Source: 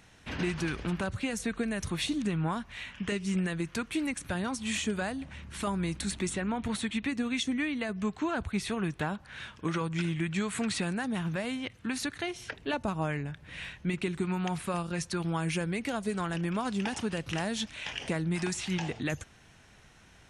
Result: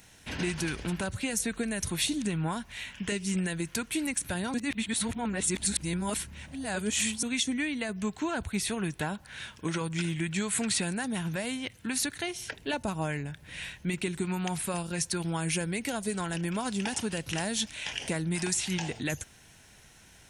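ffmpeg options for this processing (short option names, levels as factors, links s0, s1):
-filter_complex "[0:a]asplit=3[s0][s1][s2];[s0]atrim=end=4.542[s3];[s1]atrim=start=4.538:end=7.232,asetpts=PTS-STARTPTS,areverse[s4];[s2]atrim=start=7.228[s5];[s3][s4]acrossfade=d=0.004:c1=hsin:c2=hsin[s6];[s6][s5]acrossfade=d=0.004:c1=hsin:c2=hsin,aemphasis=mode=production:type=50fm,bandreject=f=1200:w=7.8"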